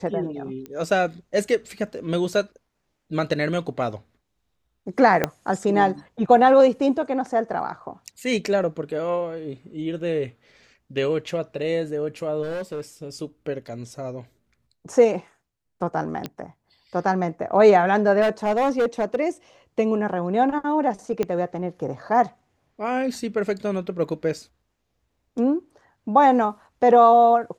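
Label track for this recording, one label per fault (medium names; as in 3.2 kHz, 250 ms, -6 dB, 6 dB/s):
0.660000	0.660000	pop -22 dBFS
5.240000	5.240000	pop -6 dBFS
12.420000	12.810000	clipped -26 dBFS
16.260000	16.260000	pop -15 dBFS
18.210000	19.160000	clipped -16.5 dBFS
21.230000	21.230000	pop -12 dBFS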